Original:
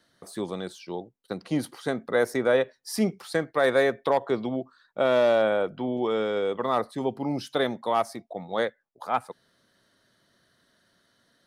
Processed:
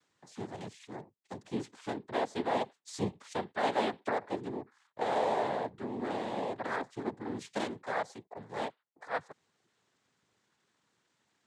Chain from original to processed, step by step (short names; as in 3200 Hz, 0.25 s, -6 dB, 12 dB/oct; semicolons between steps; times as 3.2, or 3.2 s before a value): noise vocoder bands 6; gain -9 dB